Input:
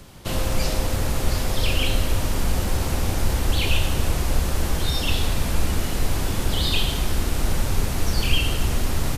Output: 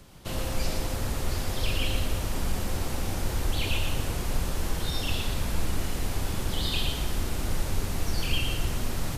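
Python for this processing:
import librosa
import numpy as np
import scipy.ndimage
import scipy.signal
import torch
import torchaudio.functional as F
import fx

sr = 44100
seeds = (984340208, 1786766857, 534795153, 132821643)

y = x + 10.0 ** (-6.0 / 20.0) * np.pad(x, (int(116 * sr / 1000.0), 0))[:len(x)]
y = y * 10.0 ** (-7.0 / 20.0)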